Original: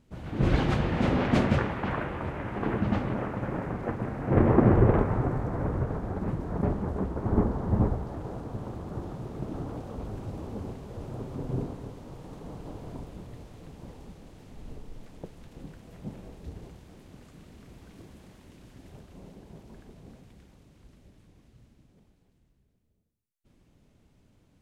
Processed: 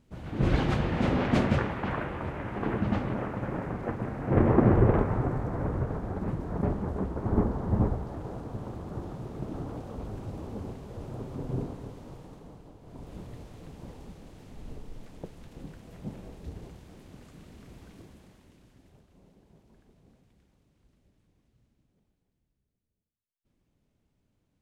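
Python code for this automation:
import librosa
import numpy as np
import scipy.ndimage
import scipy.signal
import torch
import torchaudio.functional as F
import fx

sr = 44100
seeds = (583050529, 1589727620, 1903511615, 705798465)

y = fx.gain(x, sr, db=fx.line((12.11, -1.0), (12.79, -11.5), (13.14, 0.5), (17.83, 0.5), (19.06, -11.5)))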